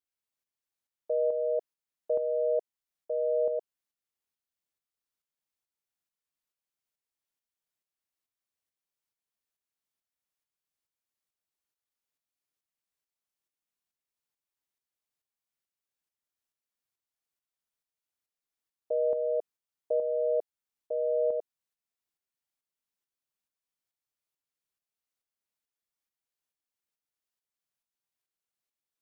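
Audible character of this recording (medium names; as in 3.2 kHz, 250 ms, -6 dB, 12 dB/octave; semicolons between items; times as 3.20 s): tremolo saw up 2.3 Hz, depth 50%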